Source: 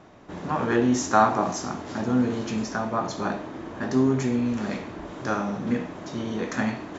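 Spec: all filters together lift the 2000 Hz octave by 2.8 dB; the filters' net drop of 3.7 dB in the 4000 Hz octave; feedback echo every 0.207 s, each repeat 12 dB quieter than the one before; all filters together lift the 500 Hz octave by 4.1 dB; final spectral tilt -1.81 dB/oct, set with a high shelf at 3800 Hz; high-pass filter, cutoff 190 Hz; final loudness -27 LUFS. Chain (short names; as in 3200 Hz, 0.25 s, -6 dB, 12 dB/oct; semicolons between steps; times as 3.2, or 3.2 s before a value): HPF 190 Hz; bell 500 Hz +5.5 dB; bell 2000 Hz +5 dB; high shelf 3800 Hz -4.5 dB; bell 4000 Hz -3.5 dB; feedback echo 0.207 s, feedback 25%, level -12 dB; gain -2.5 dB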